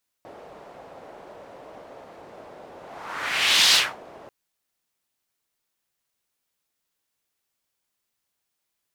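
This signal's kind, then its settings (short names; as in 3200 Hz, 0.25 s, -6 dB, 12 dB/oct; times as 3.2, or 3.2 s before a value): whoosh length 4.04 s, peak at 3.49, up 1.03 s, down 0.26 s, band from 610 Hz, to 3900 Hz, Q 1.9, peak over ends 28 dB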